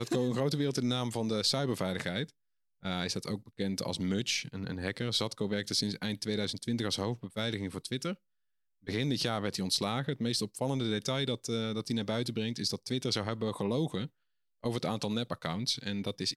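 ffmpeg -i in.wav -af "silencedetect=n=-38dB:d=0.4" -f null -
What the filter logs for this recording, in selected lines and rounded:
silence_start: 2.24
silence_end: 2.85 | silence_duration: 0.61
silence_start: 8.14
silence_end: 8.88 | silence_duration: 0.74
silence_start: 14.06
silence_end: 14.64 | silence_duration: 0.58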